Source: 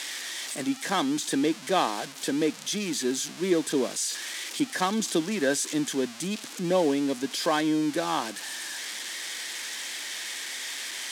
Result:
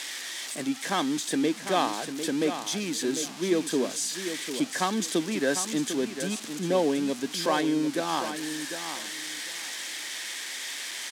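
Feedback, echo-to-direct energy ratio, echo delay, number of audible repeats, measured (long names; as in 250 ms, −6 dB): 20%, −9.5 dB, 749 ms, 2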